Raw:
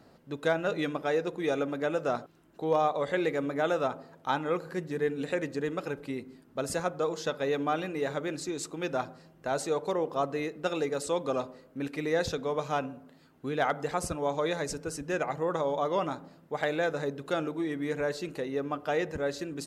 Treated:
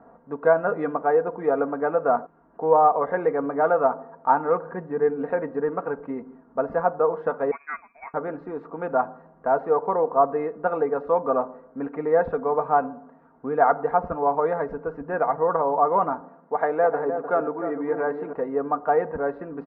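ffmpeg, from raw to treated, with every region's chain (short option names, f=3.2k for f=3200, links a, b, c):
-filter_complex "[0:a]asettb=1/sr,asplit=3[a][b][c];[a]atrim=end=7.514[d];[b]atrim=start=7.51:end=8.14,asetpts=PTS-STARTPTS,afade=t=in:d=0.004:c=qsin,afade=t=out:st=0.626:d=0.004:c=qsin,agate=range=-33dB:threshold=-24dB:ratio=3:release=100:detection=peak,lowpass=f=2.3k:t=q:w=0.5098,lowpass=f=2.3k:t=q:w=0.6013,lowpass=f=2.3k:t=q:w=0.9,lowpass=f=2.3k:t=q:w=2.563,afreqshift=-2700[e];[c]atrim=start=8.136[f];[d][e]acrossfade=d=0.004:c1=hsin:c2=qsin[g];[g][f]acrossfade=d=0.004:c1=qsin:c2=hsin,asettb=1/sr,asplit=3[h][i][j];[h]atrim=end=16.214[k];[i]atrim=start=16.21:end=18.33,asetpts=PTS-STARTPTS,afade=t=in:d=0.004:c=qsin,afade=t=out:st=2.116:d=0.004:c=qsin,highpass=180,asplit=2[l][m];[m]adelay=304,lowpass=f=1k:p=1,volume=-7dB,asplit=2[n][o];[o]adelay=304,lowpass=f=1k:p=1,volume=0.34,asplit=2[p][q];[q]adelay=304,lowpass=f=1k:p=1,volume=0.34,asplit=2[r][s];[s]adelay=304,lowpass=f=1k:p=1,volume=0.34[t];[l][n][p][r][t]amix=inputs=5:normalize=0,atrim=end_sample=93492[u];[j]atrim=start=18.326[v];[k][u]acrossfade=d=0.004:c1=hsin:c2=qsin[w];[w][v]acrossfade=d=0.004:c1=qsin:c2=hsin,lowpass=f=1.5k:w=0.5412,lowpass=f=1.5k:w=1.3066,equalizer=f=890:t=o:w=1.8:g=11,aecho=1:1:4.3:0.54"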